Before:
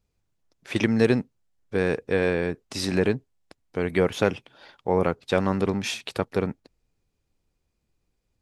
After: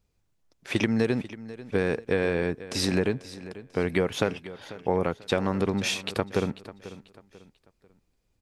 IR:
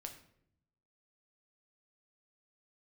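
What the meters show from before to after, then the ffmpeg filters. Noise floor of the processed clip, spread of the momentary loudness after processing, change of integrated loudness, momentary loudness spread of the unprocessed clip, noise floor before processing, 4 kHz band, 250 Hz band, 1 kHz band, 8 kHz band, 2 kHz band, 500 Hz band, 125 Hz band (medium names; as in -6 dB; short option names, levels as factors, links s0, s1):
-73 dBFS, 15 LU, -2.0 dB, 10 LU, -76 dBFS, +1.5 dB, -2.0 dB, -2.5 dB, +1.5 dB, -1.5 dB, -2.5 dB, -2.0 dB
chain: -af "acompressor=threshold=0.0794:ratio=6,aecho=1:1:492|984|1476:0.158|0.0539|0.0183,volume=1.26"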